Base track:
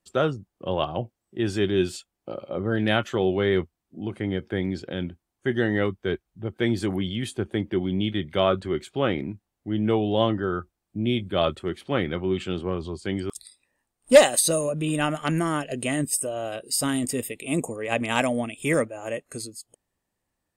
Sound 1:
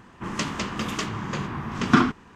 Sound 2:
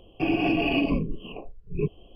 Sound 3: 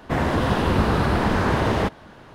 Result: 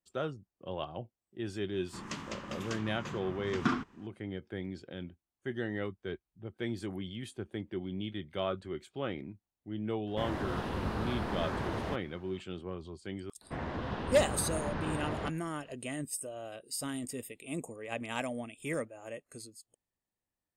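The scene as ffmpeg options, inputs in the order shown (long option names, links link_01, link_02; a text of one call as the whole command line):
ffmpeg -i bed.wav -i cue0.wav -i cue1.wav -i cue2.wav -filter_complex "[3:a]asplit=2[link_01][link_02];[0:a]volume=-12.5dB[link_03];[link_02]lowpass=4700[link_04];[1:a]atrim=end=2.35,asetpts=PTS-STARTPTS,volume=-12.5dB,afade=type=in:duration=0.004:curve=hsin,afade=type=out:start_time=2.346:duration=0.004:curve=hsin,adelay=1720[link_05];[link_01]atrim=end=2.34,asetpts=PTS-STARTPTS,volume=-15dB,afade=type=in:duration=0.004:curve=hsin,afade=type=out:start_time=2.336:duration=0.004:curve=hsin,adelay=10070[link_06];[link_04]atrim=end=2.34,asetpts=PTS-STARTPTS,volume=-16dB,afade=type=in:duration=0.004:curve=hsin,afade=type=out:start_time=2.336:duration=0.004:curve=hsin,adelay=13410[link_07];[link_03][link_05][link_06][link_07]amix=inputs=4:normalize=0" out.wav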